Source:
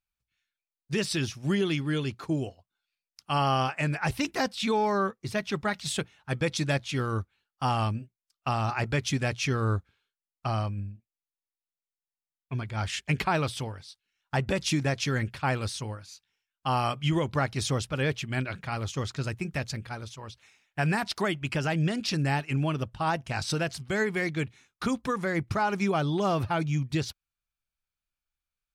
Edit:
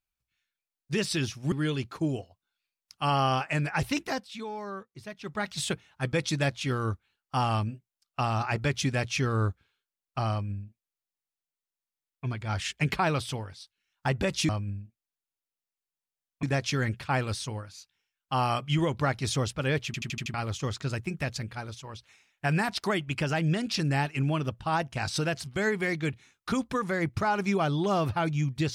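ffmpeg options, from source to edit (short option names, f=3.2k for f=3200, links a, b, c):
-filter_complex "[0:a]asplit=12[a][b][c][d][e][f][g][h][i][j][k][l];[a]atrim=end=1.522[m];[b]atrim=start=1.798:end=4.57,asetpts=PTS-STARTPTS,afade=t=out:st=2.472:d=0.3:silence=0.266073[n];[c]atrim=start=4.57:end=5.49,asetpts=PTS-STARTPTS,volume=-11.5dB[o];[d]atrim=start=5.49:end=14.772,asetpts=PTS-STARTPTS,afade=t=in:d=0.3:silence=0.266073[p];[e]atrim=start=10.588:end=12.532[q];[f]atrim=start=14.768:end=18.282[r];[g]atrim=start=18.198:end=18.282[s];[h]atrim=start=18.198:end=18.282[t];[i]atrim=start=18.198:end=18.282[u];[j]atrim=start=18.198:end=18.282[v];[k]atrim=start=18.198:end=18.282[w];[l]atrim=start=18.678[x];[n][o][p]concat=n=3:v=0:a=1[y];[m][y]acrossfade=d=0.004:c1=hsin:c2=hsin[z];[z][q]acrossfade=d=0.004:c1=hsin:c2=hsin[aa];[aa][r]acrossfade=d=0.004:c1=hsin:c2=hsin[ab];[ab][s]acrossfade=d=0.004:c1=hsin:c2=hsin[ac];[ac][t]acrossfade=d=0.004:c1=hsin:c2=hsin[ad];[ad][u]acrossfade=d=0.004:c1=hsin:c2=hsin[ae];[ae][v]acrossfade=d=0.004:c1=hsin:c2=hsin[af];[af][w]acrossfade=d=0.004:c1=hsin:c2=hsin[ag];[ag][x]acrossfade=d=0.004:c1=hsin:c2=hsin"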